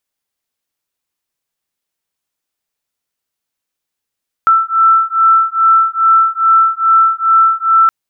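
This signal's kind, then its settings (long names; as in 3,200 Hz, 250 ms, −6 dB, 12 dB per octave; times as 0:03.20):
two tones that beat 1,330 Hz, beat 2.4 Hz, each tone −10.5 dBFS 3.42 s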